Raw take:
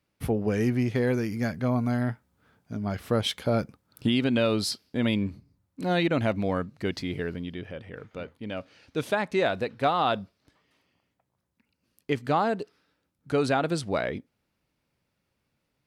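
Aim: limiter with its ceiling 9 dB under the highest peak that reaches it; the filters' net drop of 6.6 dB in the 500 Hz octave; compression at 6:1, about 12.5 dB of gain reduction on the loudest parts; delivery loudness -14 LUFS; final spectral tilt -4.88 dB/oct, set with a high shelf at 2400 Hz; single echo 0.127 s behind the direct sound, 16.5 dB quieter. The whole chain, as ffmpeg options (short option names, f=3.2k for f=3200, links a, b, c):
-af "equalizer=f=500:t=o:g=-9,highshelf=f=2.4k:g=7.5,acompressor=threshold=-34dB:ratio=6,alimiter=level_in=6dB:limit=-24dB:level=0:latency=1,volume=-6dB,aecho=1:1:127:0.15,volume=27dB"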